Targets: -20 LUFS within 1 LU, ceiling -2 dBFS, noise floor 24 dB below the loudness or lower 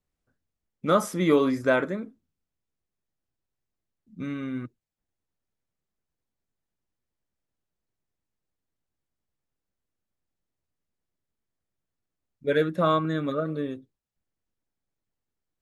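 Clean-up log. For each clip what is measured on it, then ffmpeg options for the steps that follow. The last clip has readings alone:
loudness -26.0 LUFS; peak -9.0 dBFS; loudness target -20.0 LUFS
-> -af "volume=6dB"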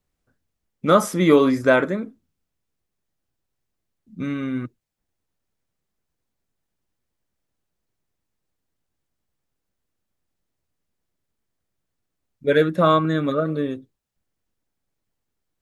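loudness -20.0 LUFS; peak -3.0 dBFS; noise floor -80 dBFS

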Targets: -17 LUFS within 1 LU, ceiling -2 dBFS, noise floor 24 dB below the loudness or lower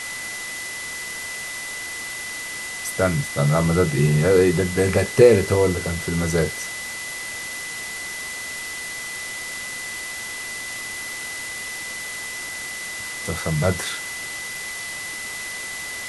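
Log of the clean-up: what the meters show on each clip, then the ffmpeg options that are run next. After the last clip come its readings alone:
steady tone 2000 Hz; tone level -31 dBFS; noise floor -32 dBFS; noise floor target -48 dBFS; loudness -23.5 LUFS; peak -2.0 dBFS; loudness target -17.0 LUFS
-> -af "bandreject=f=2k:w=30"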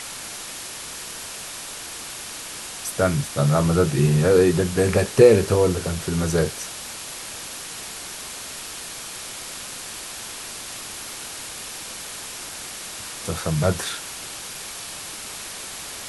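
steady tone none; noise floor -35 dBFS; noise floor target -49 dBFS
-> -af "afftdn=nr=14:nf=-35"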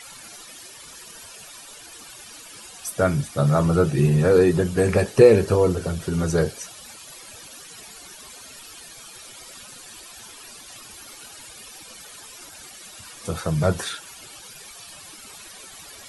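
noise floor -43 dBFS; noise floor target -44 dBFS
-> -af "afftdn=nr=6:nf=-43"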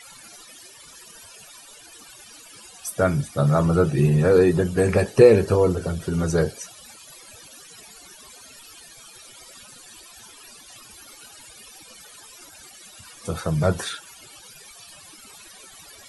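noise floor -47 dBFS; loudness -20.5 LUFS; peak -2.0 dBFS; loudness target -17.0 LUFS
-> -af "volume=3.5dB,alimiter=limit=-2dB:level=0:latency=1"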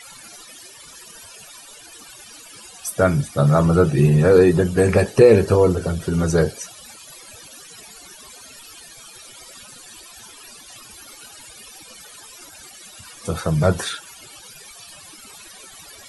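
loudness -17.5 LUFS; peak -2.0 dBFS; noise floor -43 dBFS

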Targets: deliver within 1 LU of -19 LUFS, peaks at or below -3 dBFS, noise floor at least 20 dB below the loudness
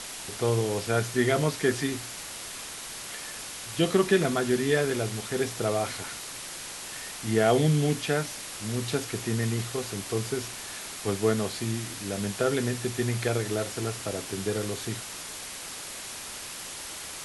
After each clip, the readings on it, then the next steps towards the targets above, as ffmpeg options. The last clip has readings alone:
noise floor -39 dBFS; noise floor target -49 dBFS; loudness -29.0 LUFS; peak -9.0 dBFS; loudness target -19.0 LUFS
-> -af "afftdn=nr=10:nf=-39"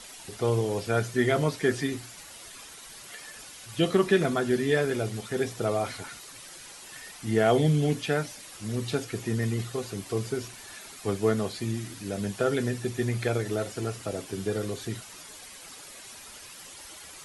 noise floor -46 dBFS; noise floor target -49 dBFS
-> -af "afftdn=nr=6:nf=-46"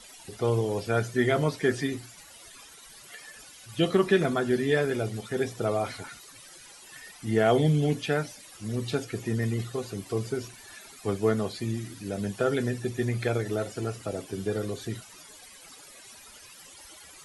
noise floor -50 dBFS; loudness -28.5 LUFS; peak -9.5 dBFS; loudness target -19.0 LUFS
-> -af "volume=9.5dB,alimiter=limit=-3dB:level=0:latency=1"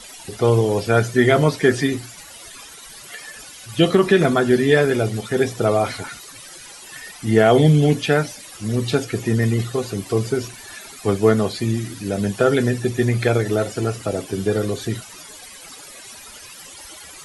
loudness -19.5 LUFS; peak -3.0 dBFS; noise floor -40 dBFS

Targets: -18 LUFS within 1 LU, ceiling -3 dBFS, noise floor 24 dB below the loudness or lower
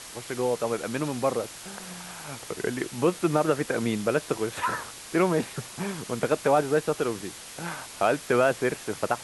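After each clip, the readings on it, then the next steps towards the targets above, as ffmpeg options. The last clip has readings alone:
noise floor -43 dBFS; noise floor target -52 dBFS; loudness -27.5 LUFS; peak -8.0 dBFS; loudness target -18.0 LUFS
-> -af "afftdn=nr=9:nf=-43"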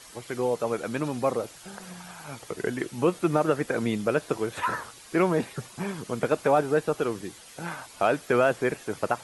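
noise floor -48 dBFS; noise floor target -52 dBFS
-> -af "afftdn=nr=6:nf=-48"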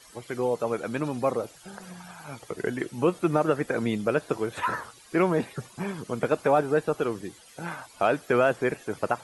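noise floor -52 dBFS; loudness -27.5 LUFS; peak -8.5 dBFS; loudness target -18.0 LUFS
-> -af "volume=9.5dB,alimiter=limit=-3dB:level=0:latency=1"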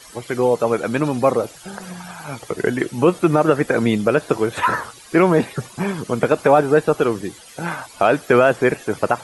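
loudness -18.5 LUFS; peak -3.0 dBFS; noise floor -43 dBFS

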